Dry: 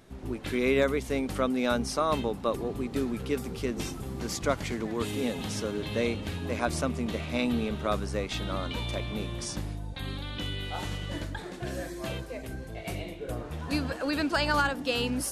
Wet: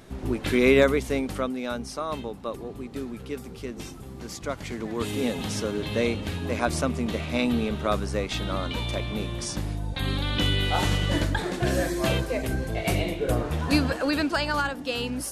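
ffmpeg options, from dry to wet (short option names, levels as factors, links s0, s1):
-af "volume=11.9,afade=t=out:st=0.68:d=0.93:silence=0.281838,afade=t=in:st=4.52:d=0.69:silence=0.421697,afade=t=in:st=9.54:d=0.88:silence=0.446684,afade=t=out:st=13.3:d=1.17:silence=0.281838"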